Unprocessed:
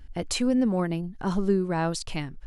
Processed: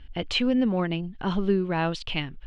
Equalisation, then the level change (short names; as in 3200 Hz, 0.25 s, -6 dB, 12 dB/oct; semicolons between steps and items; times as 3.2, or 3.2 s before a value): synth low-pass 3100 Hz, resonance Q 3.4; 0.0 dB